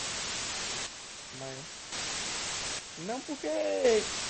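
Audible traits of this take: a quantiser's noise floor 6-bit, dither triangular; chopped level 0.52 Hz, depth 65%, duty 45%; MP3

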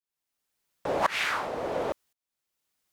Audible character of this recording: tremolo saw up 0.94 Hz, depth 95%

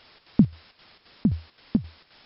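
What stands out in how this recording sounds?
a quantiser's noise floor 8-bit, dither triangular; chopped level 3.8 Hz, depth 60%, duty 70%; MP3

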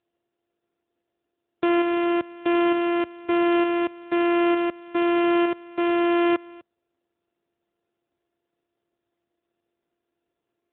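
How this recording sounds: a buzz of ramps at a fixed pitch in blocks of 128 samples; tremolo saw up 1.1 Hz, depth 40%; AMR-NB

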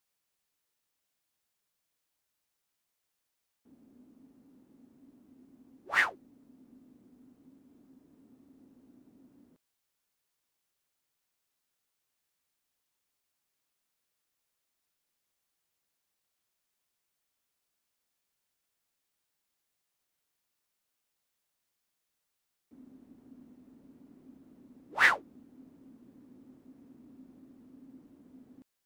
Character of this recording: noise floor -83 dBFS; spectral tilt -1.5 dB/octave

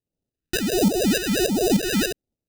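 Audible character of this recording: aliases and images of a low sample rate 1.1 kHz, jitter 0%; phasing stages 2, 1.4 Hz, lowest notch 670–1600 Hz; tremolo saw up 3.4 Hz, depth 65%

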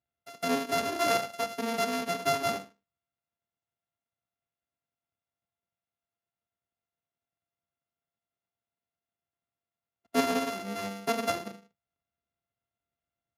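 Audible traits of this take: a buzz of ramps at a fixed pitch in blocks of 64 samples; Speex

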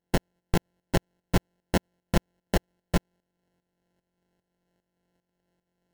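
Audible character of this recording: a buzz of ramps at a fixed pitch in blocks of 32 samples; tremolo saw up 2.5 Hz, depth 75%; aliases and images of a low sample rate 1.2 kHz, jitter 0%; AC-3

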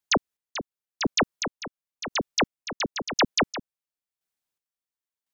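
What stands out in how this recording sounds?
chopped level 0.95 Hz, depth 60%, duty 35%

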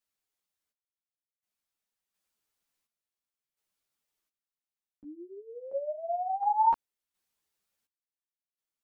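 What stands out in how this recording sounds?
random-step tremolo 1.4 Hz, depth 95%; a shimmering, thickened sound

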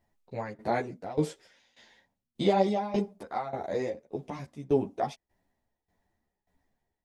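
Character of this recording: tremolo saw down 1.7 Hz, depth 90%; a shimmering, thickened sound

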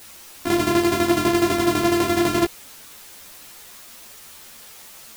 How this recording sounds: a buzz of ramps at a fixed pitch in blocks of 128 samples; tremolo saw down 12 Hz, depth 70%; a quantiser's noise floor 8-bit, dither triangular; a shimmering, thickened sound

